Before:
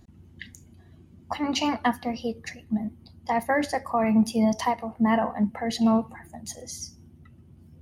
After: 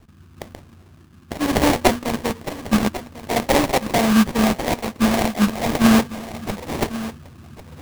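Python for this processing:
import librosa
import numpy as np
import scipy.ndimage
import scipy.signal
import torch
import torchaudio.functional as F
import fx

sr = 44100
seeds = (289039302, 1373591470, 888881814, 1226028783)

p1 = fx.rattle_buzz(x, sr, strikes_db=-36.0, level_db=-18.0)
p2 = fx.high_shelf(p1, sr, hz=2400.0, db=7.5)
p3 = fx.hum_notches(p2, sr, base_hz=60, count=4)
p4 = fx.rider(p3, sr, range_db=10, speed_s=2.0)
p5 = p3 + F.gain(torch.from_numpy(p4), 2.0).numpy()
p6 = fx.rotary_switch(p5, sr, hz=1.0, then_hz=5.0, switch_at_s=4.09)
p7 = fx.sample_hold(p6, sr, seeds[0], rate_hz=1400.0, jitter_pct=20)
y = p7 + fx.echo_single(p7, sr, ms=1096, db=-14.5, dry=0)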